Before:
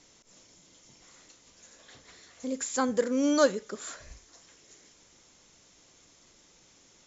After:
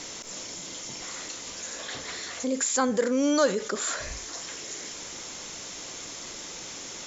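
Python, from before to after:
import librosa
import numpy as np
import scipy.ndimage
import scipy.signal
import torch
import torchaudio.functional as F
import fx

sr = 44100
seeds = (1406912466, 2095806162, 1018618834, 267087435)

y = fx.low_shelf(x, sr, hz=200.0, db=-8.5)
y = fx.env_flatten(y, sr, amount_pct=50)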